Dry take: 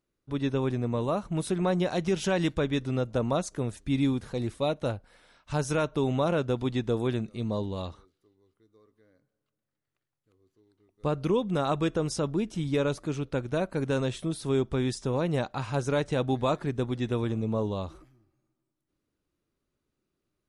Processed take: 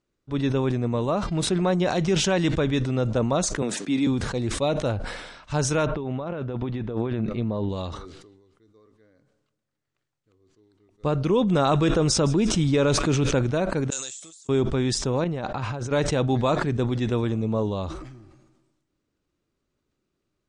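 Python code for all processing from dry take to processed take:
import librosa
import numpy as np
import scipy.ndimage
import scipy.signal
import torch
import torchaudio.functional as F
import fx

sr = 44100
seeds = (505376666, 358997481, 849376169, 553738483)

y = fx.high_shelf(x, sr, hz=7700.0, db=-5.5, at=(1.16, 1.61), fade=0.02)
y = fx.dmg_buzz(y, sr, base_hz=400.0, harmonics=13, level_db=-64.0, tilt_db=-1, odd_only=False, at=(1.16, 1.61), fade=0.02)
y = fx.chain(y, sr, fx.highpass(hz=190.0, slope=24),
    fx.band_squash(depth_pct=40), at=(3.62, 4.07))
y = fx.chain(y, sr, fx.lowpass(hz=2500.0, slope=12),
    fx.over_compress(threshold_db=-32.0, ratio=-1.0), at=(5.86, 7.69))
y = fx.chain(y, sr, fx.echo_wet_highpass(ms=156, feedback_pct=61, hz=1900.0, wet_db=-19),
    fx.env_flatten(amount_pct=70), at=(11.32, 13.39))
y = fx.chain(y, sr, fx.leveller(passes=1),
    fx.bandpass_q(hz=7200.0, q=10.0), at=(13.9, 14.49))
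y = fx.chain(y, sr, fx.lowpass(hz=3100.0, slope=6),
    fx.over_compress(threshold_db=-35.0, ratio=-1.0), at=(15.24, 15.91))
y = scipy.signal.sosfilt(scipy.signal.butter(6, 8600.0, 'lowpass', fs=sr, output='sos'), y)
y = fx.sustainer(y, sr, db_per_s=47.0)
y = y * librosa.db_to_amplitude(3.5)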